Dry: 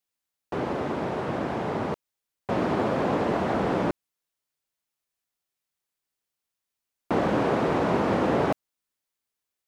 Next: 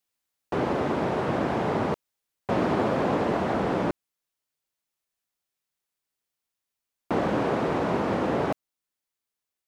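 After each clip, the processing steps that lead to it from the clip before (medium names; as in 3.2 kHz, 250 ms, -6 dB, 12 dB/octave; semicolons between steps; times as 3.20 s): gain riding 2 s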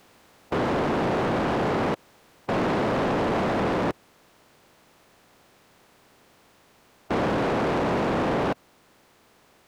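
spectral levelling over time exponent 0.6; in parallel at +0.5 dB: peak limiter -20 dBFS, peak gain reduction 9 dB; on the sum: saturation -21 dBFS, distortion -10 dB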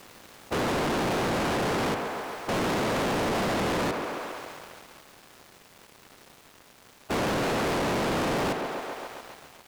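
thinning echo 136 ms, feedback 75%, high-pass 260 Hz, level -16 dB; waveshaping leveller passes 5; trim -7.5 dB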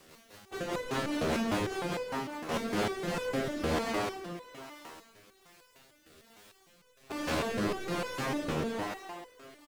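bouncing-ball echo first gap 180 ms, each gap 0.75×, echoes 5; rotary cabinet horn 5 Hz, later 1.2 Hz, at 2.40 s; resonator arpeggio 6.6 Hz 79–500 Hz; trim +6 dB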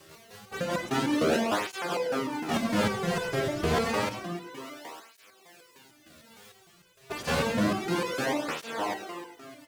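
reverberation RT60 0.35 s, pre-delay 83 ms, DRR 10.5 dB; cancelling through-zero flanger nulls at 0.29 Hz, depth 4.2 ms; trim +7.5 dB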